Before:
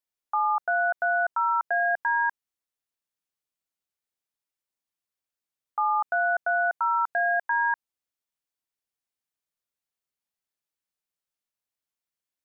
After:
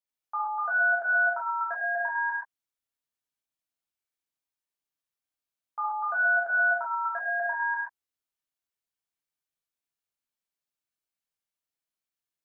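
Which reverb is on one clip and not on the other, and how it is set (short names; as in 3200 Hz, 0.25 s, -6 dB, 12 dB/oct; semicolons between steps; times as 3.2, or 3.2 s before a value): non-linear reverb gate 0.16 s flat, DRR -6.5 dB; gain -9.5 dB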